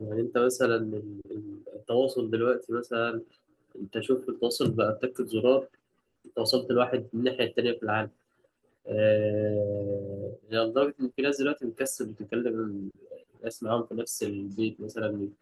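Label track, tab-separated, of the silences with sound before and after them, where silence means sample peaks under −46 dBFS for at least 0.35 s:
3.230000	3.750000	silence
5.670000	6.250000	silence
8.080000	8.860000	silence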